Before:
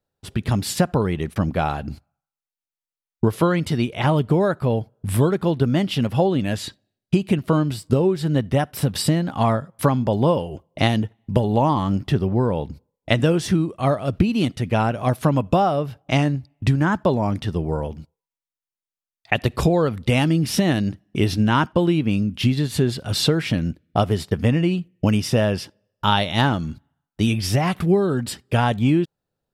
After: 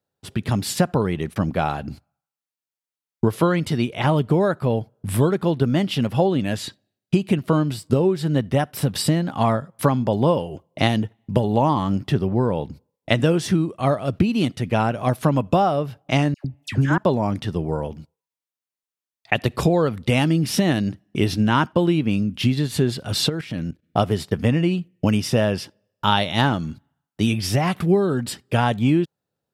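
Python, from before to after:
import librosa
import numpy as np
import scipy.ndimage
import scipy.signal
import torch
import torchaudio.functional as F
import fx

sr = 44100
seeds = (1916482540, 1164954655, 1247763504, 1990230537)

y = scipy.signal.sosfilt(scipy.signal.butter(2, 90.0, 'highpass', fs=sr, output='sos'), x)
y = fx.dispersion(y, sr, late='lows', ms=103.0, hz=1400.0, at=(16.34, 16.98))
y = fx.level_steps(y, sr, step_db=13, at=(23.28, 23.82), fade=0.02)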